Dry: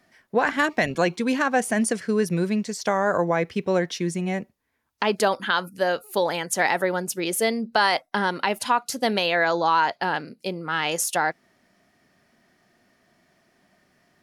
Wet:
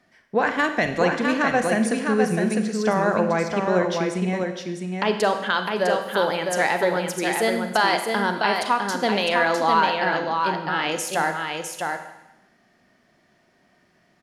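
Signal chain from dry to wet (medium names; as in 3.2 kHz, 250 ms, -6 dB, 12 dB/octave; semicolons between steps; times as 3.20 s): treble shelf 9.2 kHz -11 dB; on a send: delay 655 ms -4.5 dB; on the sum: Schroeder reverb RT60 0.99 s, combs from 33 ms, DRR 7.5 dB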